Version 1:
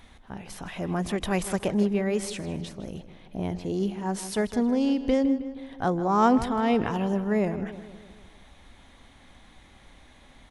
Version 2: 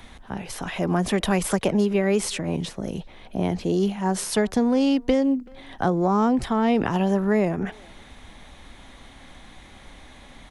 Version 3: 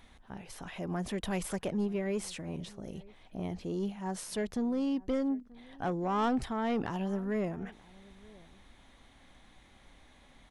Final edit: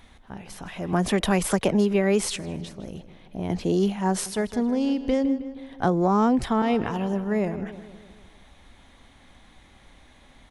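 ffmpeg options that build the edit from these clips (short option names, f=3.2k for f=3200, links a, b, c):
-filter_complex "[1:a]asplit=3[a][b][c];[0:a]asplit=4[d][e][f][g];[d]atrim=end=0.932[h];[a]atrim=start=0.928:end=2.362[i];[e]atrim=start=2.358:end=3.502[j];[b]atrim=start=3.498:end=4.262[k];[f]atrim=start=4.258:end=5.832[l];[c]atrim=start=5.828:end=6.622[m];[g]atrim=start=6.618[n];[h][i]acrossfade=d=0.004:c1=hsin:c2=hsin[o];[o][j]acrossfade=d=0.004:c1=hsin:c2=hsin[p];[p][k]acrossfade=d=0.004:c1=hsin:c2=hsin[q];[q][l]acrossfade=d=0.004:c1=hsin:c2=hsin[r];[r][m]acrossfade=d=0.004:c1=hsin:c2=hsin[s];[s][n]acrossfade=d=0.004:c1=hsin:c2=hsin"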